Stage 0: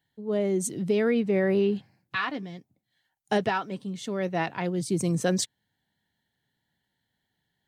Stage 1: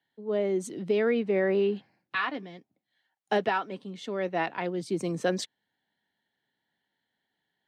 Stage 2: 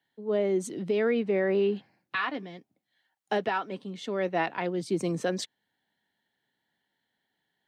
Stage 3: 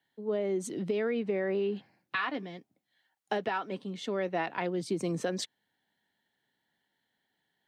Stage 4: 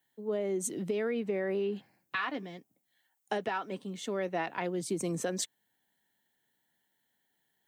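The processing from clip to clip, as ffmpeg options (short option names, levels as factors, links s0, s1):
-filter_complex "[0:a]acrossover=split=220 4500:gain=0.158 1 0.224[s0][s1][s2];[s0][s1][s2]amix=inputs=3:normalize=0"
-af "alimiter=limit=0.112:level=0:latency=1:release=261,volume=1.19"
-af "acompressor=threshold=0.0447:ratio=6"
-af "aexciter=amount=2.8:drive=6.3:freq=6400,volume=0.841"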